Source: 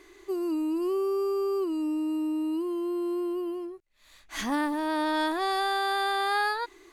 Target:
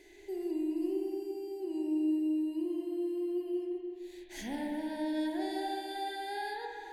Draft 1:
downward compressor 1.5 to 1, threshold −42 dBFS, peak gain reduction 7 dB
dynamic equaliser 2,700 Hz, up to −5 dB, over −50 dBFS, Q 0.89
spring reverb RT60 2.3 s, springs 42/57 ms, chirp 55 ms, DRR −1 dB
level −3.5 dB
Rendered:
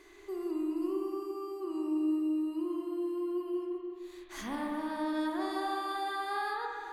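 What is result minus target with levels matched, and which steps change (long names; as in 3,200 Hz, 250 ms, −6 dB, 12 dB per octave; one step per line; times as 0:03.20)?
1,000 Hz band +3.5 dB
add after dynamic equaliser: Butterworth band-reject 1,200 Hz, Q 1.4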